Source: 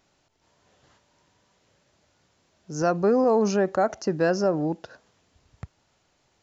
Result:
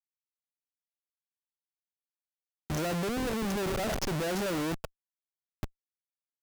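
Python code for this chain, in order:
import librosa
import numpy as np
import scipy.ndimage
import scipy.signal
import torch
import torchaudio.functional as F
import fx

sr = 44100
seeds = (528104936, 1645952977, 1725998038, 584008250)

y = fx.over_compress(x, sr, threshold_db=-32.0, ratio=-1.0, at=(3.07, 3.99))
y = fx.schmitt(y, sr, flips_db=-36.5)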